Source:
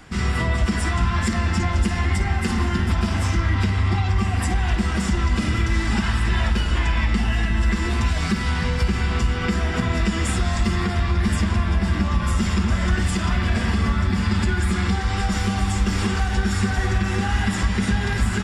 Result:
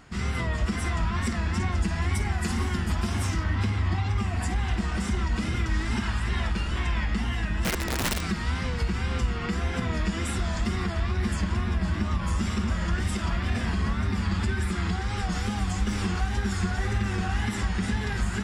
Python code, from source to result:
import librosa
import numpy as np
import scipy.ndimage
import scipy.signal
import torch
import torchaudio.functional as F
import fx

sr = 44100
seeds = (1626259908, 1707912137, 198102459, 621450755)

y = fx.high_shelf(x, sr, hz=7800.0, db=10.5, at=(2.01, 3.44))
y = fx.echo_bbd(y, sr, ms=416, stages=4096, feedback_pct=33, wet_db=-11.5)
y = fx.overflow_wrap(y, sr, gain_db=15.0, at=(7.62, 8.22))
y = fx.wow_flutter(y, sr, seeds[0], rate_hz=2.1, depth_cents=100.0)
y = y * 10.0 ** (-6.5 / 20.0)